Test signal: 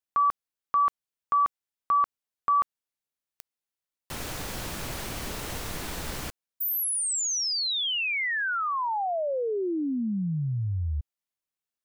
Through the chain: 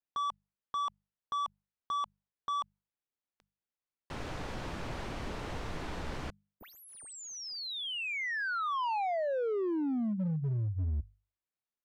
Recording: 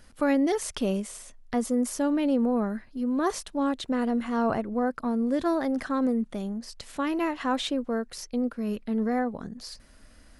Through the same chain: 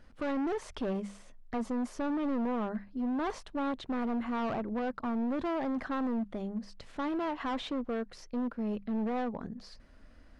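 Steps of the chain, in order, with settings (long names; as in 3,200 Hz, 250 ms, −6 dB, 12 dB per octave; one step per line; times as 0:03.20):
mains-hum notches 50/100/150/200 Hz
dynamic equaliser 920 Hz, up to +6 dB, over −43 dBFS, Q 2.1
hard clipping −27.5 dBFS
head-to-tape spacing loss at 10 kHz 21 dB
level −1.5 dB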